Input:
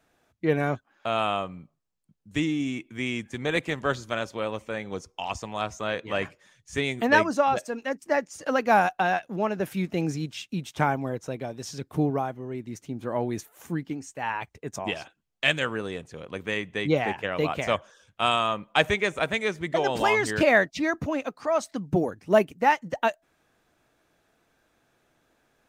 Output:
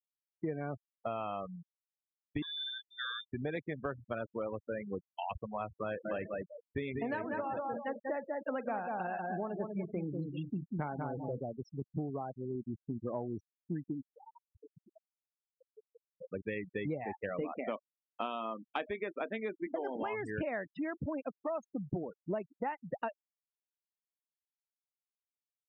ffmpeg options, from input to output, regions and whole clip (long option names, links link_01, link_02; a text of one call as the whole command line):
ffmpeg -i in.wav -filter_complex "[0:a]asettb=1/sr,asplit=3[link_01][link_02][link_03];[link_01]atrim=end=2.424[link_04];[link_02]atrim=start=2.42:end=3.32,asetpts=PTS-STARTPTS,afade=type=in:duration=0.004:curve=qsin,afade=type=out:start_time=0.896:duration=0.004:curve=qsin,highpass=130,lowpass=frequency=3200:width_type=q:width=0.5098,lowpass=frequency=3200:width_type=q:width=0.6013,lowpass=frequency=3200:width_type=q:width=0.9,lowpass=frequency=3200:width_type=q:width=2.563,afreqshift=-3800[link_05];[link_03]atrim=start=3.316[link_06];[link_04][link_05]acrossfade=duration=0.004:curve1=hsin:curve2=qsin[link_07];[link_07][link_06]acrossfade=duration=0.004:curve1=qsin:curve2=hsin,asettb=1/sr,asplit=3[link_08][link_09][link_10];[link_08]atrim=end=5.864[link_11];[link_09]atrim=start=5.86:end=11.41,asetpts=PTS-STARTPTS,afade=type=in:duration=0.004:curve=qsin,afade=type=out:start_time=5.546:duration=0.004:curve=qsin,asplit=2[link_12][link_13];[link_13]adelay=47,volume=-14dB[link_14];[link_12][link_14]amix=inputs=2:normalize=0,atrim=end_sample=244755,asplit=2[link_15][link_16];[link_16]adelay=192,lowpass=frequency=3200:poles=1,volume=-4.5dB,asplit=2[link_17][link_18];[link_18]adelay=192,lowpass=frequency=3200:poles=1,volume=0.3,asplit=2[link_19][link_20];[link_20]adelay=192,lowpass=frequency=3200:poles=1,volume=0.3,asplit=2[link_21][link_22];[link_22]adelay=192,lowpass=frequency=3200:poles=1,volume=0.3[link_23];[link_15][link_17][link_19][link_21][link_23]amix=inputs=5:normalize=0,atrim=end_sample=244755[link_24];[link_10]atrim=start=11.406[link_25];[link_11][link_24]acrossfade=duration=0.004:curve1=hsin:curve2=qsin[link_26];[link_26][link_25]acrossfade=duration=0.004:curve1=qsin:curve2=hsin,asettb=1/sr,asplit=3[link_27][link_28][link_29];[link_27]atrim=end=14.164[link_30];[link_28]atrim=start=14.16:end=16.21,asetpts=PTS-STARTPTS,afade=type=in:duration=0.004:curve=qsin,afade=type=out:start_time=2.046:duration=0.004:curve=qsin,equalizer=frequency=6900:width=0.5:gain=-12,acompressor=threshold=-40dB:ratio=20:attack=3.2:release=140:knee=1:detection=peak[link_31];[link_29]atrim=start=16.206[link_32];[link_30][link_31]acrossfade=duration=0.004:curve1=hsin:curve2=qsin[link_33];[link_33][link_32]acrossfade=duration=0.004:curve1=qsin:curve2=hsin,asettb=1/sr,asplit=3[link_34][link_35][link_36];[link_34]atrim=end=17.414[link_37];[link_35]atrim=start=17.41:end=20.03,asetpts=PTS-STARTPTS,afade=type=in:duration=0.004:curve=qsin,afade=type=out:start_time=2.616:duration=0.004:curve=qsin,lowshelf=frequency=190:width_type=q:width=3:gain=-8,asplit=2[link_38][link_39];[link_39]adelay=27,volume=-14dB[link_40];[link_38][link_40]amix=inputs=2:normalize=0,atrim=end_sample=115542[link_41];[link_36]atrim=start=20.026[link_42];[link_37][link_41]acrossfade=duration=0.004:curve1=hsin:curve2=qsin[link_43];[link_43][link_42]acrossfade=duration=0.004:curve1=qsin:curve2=hsin,afftfilt=real='re*gte(hypot(re,im),0.0562)':imag='im*gte(hypot(re,im),0.0562)':win_size=1024:overlap=0.75,lowpass=frequency=1300:poles=1,acompressor=threshold=-32dB:ratio=10,volume=-1.5dB" out.wav